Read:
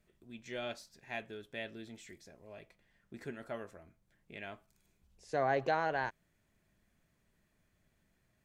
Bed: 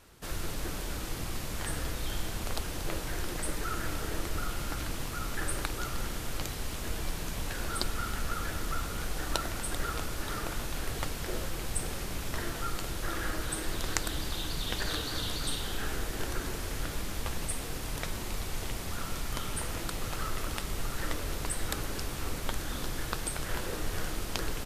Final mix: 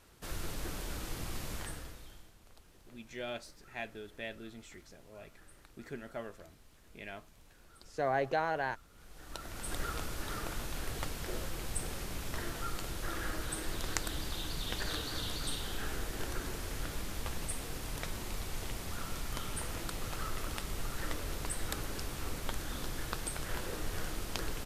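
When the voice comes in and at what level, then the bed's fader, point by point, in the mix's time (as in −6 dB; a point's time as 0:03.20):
2.65 s, 0.0 dB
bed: 0:01.54 −4 dB
0:02.36 −25.5 dB
0:08.88 −25.5 dB
0:09.72 −4 dB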